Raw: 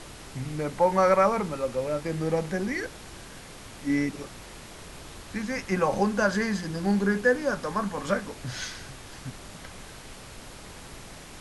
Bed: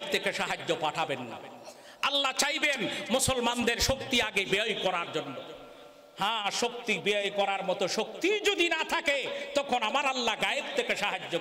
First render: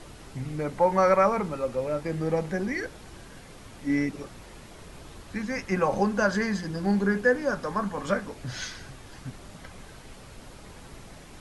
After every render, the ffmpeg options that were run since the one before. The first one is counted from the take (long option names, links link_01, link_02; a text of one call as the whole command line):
ffmpeg -i in.wav -af "afftdn=noise_reduction=6:noise_floor=-45" out.wav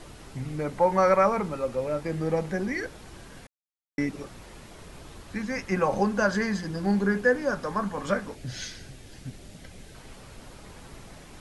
ffmpeg -i in.wav -filter_complex "[0:a]asettb=1/sr,asplit=3[link_01][link_02][link_03];[link_01]atrim=end=8.354[link_04];[link_02]atrim=start=8.35:end=9.95,asetpts=PTS-STARTPTS,afade=type=in:duration=0.004:curve=qsin,afade=type=out:start_time=1.596:duration=0.004:curve=qsin,equalizer=frequency=1100:width=1.4:gain=-11[link_05];[link_03]atrim=start=9.946[link_06];[link_04][link_05]acrossfade=duration=0.004:curve1=hsin:curve2=qsin[link_07];[link_07][link_06]acrossfade=duration=0.004:curve1=qsin:curve2=hsin,asplit=3[link_08][link_09][link_10];[link_08]atrim=end=3.47,asetpts=PTS-STARTPTS,afade=type=out:start_time=3.466:duration=0.004:curve=hsin[link_11];[link_09]atrim=start=3.47:end=3.98,asetpts=PTS-STARTPTS,volume=0[link_12];[link_10]atrim=start=3.98,asetpts=PTS-STARTPTS,afade=type=in:duration=0.004:curve=hsin[link_13];[link_11][link_12][link_13]concat=n=3:v=0:a=1" out.wav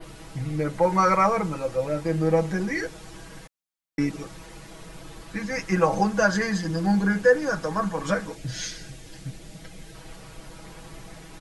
ffmpeg -i in.wav -af "adynamicequalizer=threshold=0.00355:dfrequency=6800:dqfactor=1.3:tfrequency=6800:tqfactor=1.3:attack=5:release=100:ratio=0.375:range=2:mode=boostabove:tftype=bell,aecho=1:1:6.2:0.94" out.wav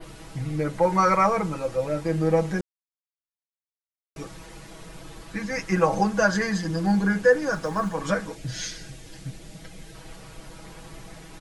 ffmpeg -i in.wav -filter_complex "[0:a]asettb=1/sr,asplit=3[link_01][link_02][link_03];[link_01]atrim=end=7.534[link_04];[link_02]atrim=start=7.53:end=7.94,asetpts=PTS-STARTPTS,afade=type=in:duration=0.004:curve=qsin,afade=type=out:start_time=0.406:duration=0.004:curve=qsin,acrusher=bits=9:mode=log:mix=0:aa=0.000001[link_05];[link_03]atrim=start=7.936[link_06];[link_04][link_05]acrossfade=duration=0.004:curve1=hsin:curve2=qsin[link_07];[link_07][link_06]acrossfade=duration=0.004:curve1=qsin:curve2=hsin,asplit=3[link_08][link_09][link_10];[link_08]atrim=end=2.61,asetpts=PTS-STARTPTS,afade=type=out:start_time=2.606:duration=0.004:curve=hsin[link_11];[link_09]atrim=start=2.61:end=4.16,asetpts=PTS-STARTPTS,volume=0[link_12];[link_10]atrim=start=4.16,asetpts=PTS-STARTPTS,afade=type=in:duration=0.004:curve=hsin[link_13];[link_11][link_12][link_13]concat=n=3:v=0:a=1" out.wav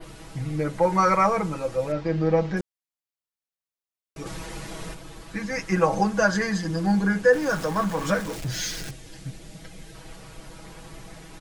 ffmpeg -i in.wav -filter_complex "[0:a]asettb=1/sr,asplit=3[link_01][link_02][link_03];[link_01]atrim=end=1.924[link_04];[link_02]atrim=start=1.92:end=2.57,asetpts=PTS-STARTPTS,afade=type=in:duration=0.004:curve=qsin,afade=type=out:start_time=0.646:duration=0.004:curve=qsin,lowpass=frequency=5200:width=0.5412,lowpass=frequency=5200:width=1.3066[link_05];[link_03]atrim=start=2.566[link_06];[link_04][link_05]acrossfade=duration=0.004:curve1=hsin:curve2=qsin[link_07];[link_07][link_06]acrossfade=duration=0.004:curve1=qsin:curve2=hsin,asplit=3[link_08][link_09][link_10];[link_08]afade=type=out:start_time=4.25:duration=0.02[link_11];[link_09]acontrast=85,afade=type=in:start_time=4.25:duration=0.02,afade=type=out:start_time=4.93:duration=0.02[link_12];[link_10]afade=type=in:start_time=4.93:duration=0.02[link_13];[link_11][link_12][link_13]amix=inputs=3:normalize=0,asettb=1/sr,asplit=3[link_14][link_15][link_16];[link_14]atrim=end=7.334[link_17];[link_15]atrim=start=7.33:end=8.91,asetpts=PTS-STARTPTS,afade=type=in:duration=0.004:curve=qsin,afade=type=out:start_time=1.576:duration=0.004:curve=qsin,aeval=exprs='val(0)+0.5*0.0237*sgn(val(0))':channel_layout=same[link_18];[link_16]atrim=start=8.906[link_19];[link_17][link_18]acrossfade=duration=0.004:curve1=hsin:curve2=qsin[link_20];[link_20][link_19]acrossfade=duration=0.004:curve1=qsin:curve2=hsin" out.wav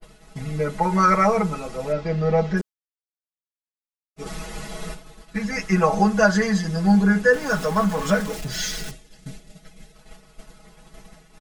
ffmpeg -i in.wav -af "agate=range=-33dB:threshold=-34dB:ratio=3:detection=peak,aecho=1:1:4.7:0.96" out.wav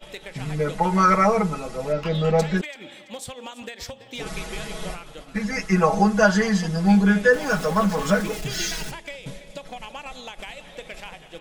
ffmpeg -i in.wav -i bed.wav -filter_complex "[1:a]volume=-9.5dB[link_01];[0:a][link_01]amix=inputs=2:normalize=0" out.wav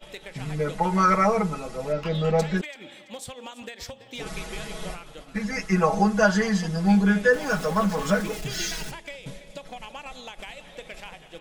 ffmpeg -i in.wav -af "volume=-2.5dB" out.wav